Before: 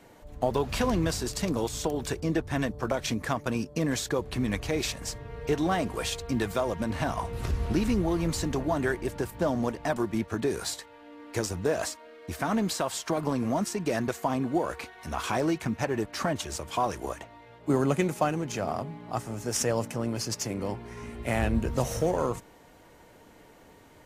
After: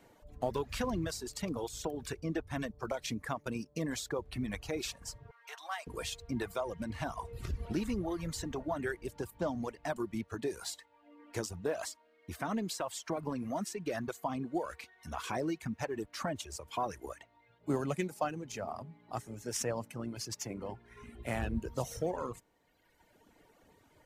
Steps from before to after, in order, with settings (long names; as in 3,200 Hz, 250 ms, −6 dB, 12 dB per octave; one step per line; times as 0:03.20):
0:05.31–0:05.87: high-pass filter 850 Hz 24 dB per octave
reverb reduction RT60 1.5 s
level −7 dB